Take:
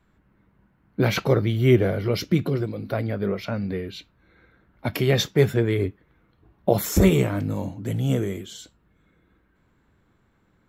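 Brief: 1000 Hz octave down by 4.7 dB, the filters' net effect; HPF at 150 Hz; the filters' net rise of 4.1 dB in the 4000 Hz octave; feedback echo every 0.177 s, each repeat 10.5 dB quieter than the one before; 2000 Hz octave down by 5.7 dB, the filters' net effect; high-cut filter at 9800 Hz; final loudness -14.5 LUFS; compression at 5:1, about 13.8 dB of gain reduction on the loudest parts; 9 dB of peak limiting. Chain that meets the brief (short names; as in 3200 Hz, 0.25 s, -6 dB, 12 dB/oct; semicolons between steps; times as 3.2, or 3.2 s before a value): HPF 150 Hz; LPF 9800 Hz; bell 1000 Hz -6 dB; bell 2000 Hz -7.5 dB; bell 4000 Hz +7.5 dB; compressor 5:1, threshold -30 dBFS; limiter -25.5 dBFS; feedback echo 0.177 s, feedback 30%, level -10.5 dB; gain +21.5 dB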